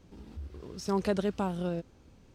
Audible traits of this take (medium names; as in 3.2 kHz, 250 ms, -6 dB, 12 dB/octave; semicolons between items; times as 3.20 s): noise floor -59 dBFS; spectral tilt -6.5 dB/octave